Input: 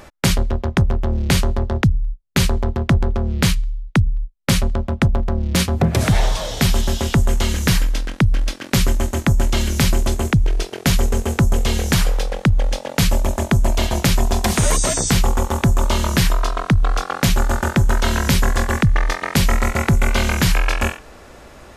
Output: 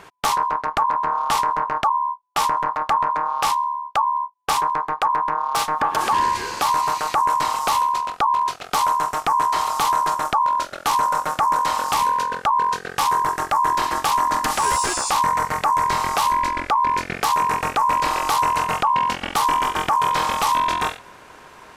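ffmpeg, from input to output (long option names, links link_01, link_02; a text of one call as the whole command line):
ffmpeg -i in.wav -af "asoftclip=type=tanh:threshold=-9.5dB,aeval=exprs='val(0)*sin(2*PI*1000*n/s)':channel_layout=same" out.wav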